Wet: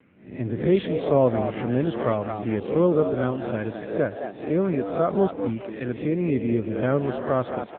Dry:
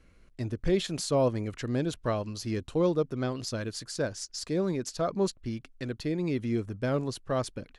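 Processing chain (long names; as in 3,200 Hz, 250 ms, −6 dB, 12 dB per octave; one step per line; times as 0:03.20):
peak hold with a rise ahead of every peak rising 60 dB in 0.52 s
band-pass filter 100–2,900 Hz
on a send: echo with shifted repeats 216 ms, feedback 33%, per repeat +98 Hz, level −8 dB
on the sum: level +6 dB
AMR narrowband 6.7 kbit/s 8,000 Hz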